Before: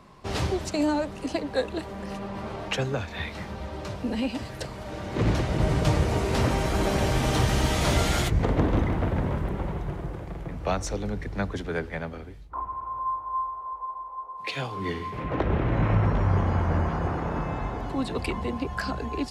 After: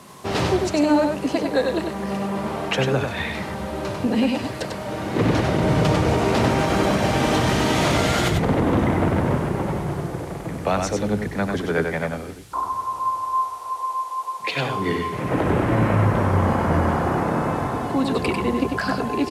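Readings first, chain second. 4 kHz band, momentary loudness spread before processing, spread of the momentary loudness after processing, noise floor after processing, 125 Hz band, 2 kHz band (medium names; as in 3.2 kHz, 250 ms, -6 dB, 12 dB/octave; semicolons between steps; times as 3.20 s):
+5.5 dB, 12 LU, 8 LU, -32 dBFS, +3.0 dB, +7.0 dB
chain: high-pass 120 Hz 12 dB/octave; treble shelf 4.6 kHz -6.5 dB; peak limiter -18.5 dBFS, peak gain reduction 8 dB; band noise 1–12 kHz -60 dBFS; delay 96 ms -4.5 dB; trim +7.5 dB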